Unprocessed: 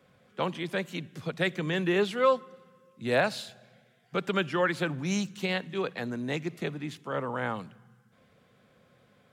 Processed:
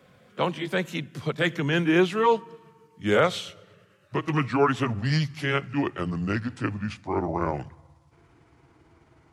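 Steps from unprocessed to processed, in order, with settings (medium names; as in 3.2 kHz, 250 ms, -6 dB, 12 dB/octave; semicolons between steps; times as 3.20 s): pitch bend over the whole clip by -8.5 st starting unshifted; trim +6 dB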